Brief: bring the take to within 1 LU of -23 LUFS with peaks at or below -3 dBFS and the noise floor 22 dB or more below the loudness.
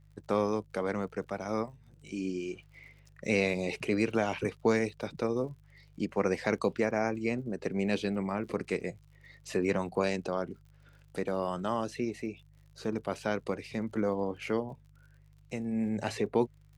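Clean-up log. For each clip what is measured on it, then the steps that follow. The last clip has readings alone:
ticks 57/s; hum 50 Hz; harmonics up to 150 Hz; hum level -56 dBFS; loudness -33.0 LUFS; peak -14.5 dBFS; loudness target -23.0 LUFS
-> de-click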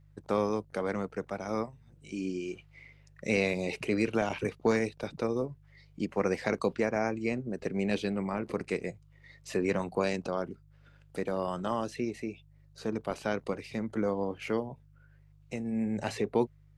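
ticks 0.12/s; hum 50 Hz; harmonics up to 150 Hz; hum level -56 dBFS
-> de-hum 50 Hz, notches 3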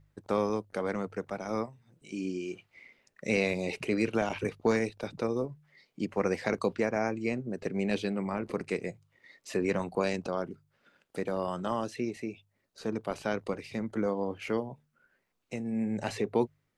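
hum none; loudness -33.0 LUFS; peak -14.5 dBFS; loudness target -23.0 LUFS
-> gain +10 dB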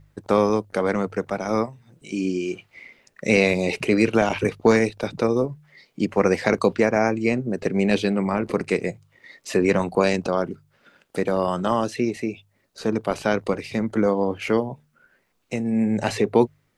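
loudness -23.0 LUFS; peak -4.5 dBFS; noise floor -67 dBFS

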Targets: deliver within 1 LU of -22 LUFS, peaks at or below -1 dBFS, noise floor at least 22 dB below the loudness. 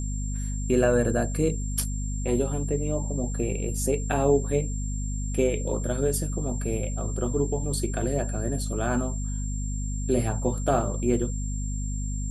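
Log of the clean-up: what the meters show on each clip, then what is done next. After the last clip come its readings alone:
hum 50 Hz; harmonics up to 250 Hz; hum level -27 dBFS; steady tone 7400 Hz; tone level -39 dBFS; loudness -27.5 LUFS; peak -9.0 dBFS; loudness target -22.0 LUFS
-> notches 50/100/150/200/250 Hz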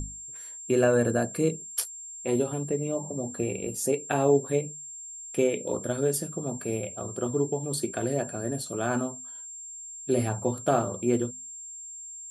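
hum none; steady tone 7400 Hz; tone level -39 dBFS
-> notch 7400 Hz, Q 30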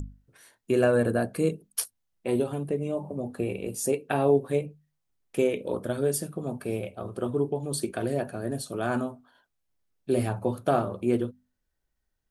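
steady tone none; loudness -28.5 LUFS; peak -10.5 dBFS; loudness target -22.0 LUFS
-> gain +6.5 dB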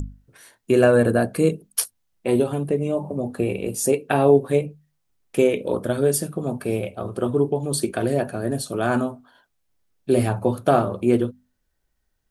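loudness -22.0 LUFS; peak -4.0 dBFS; noise floor -73 dBFS

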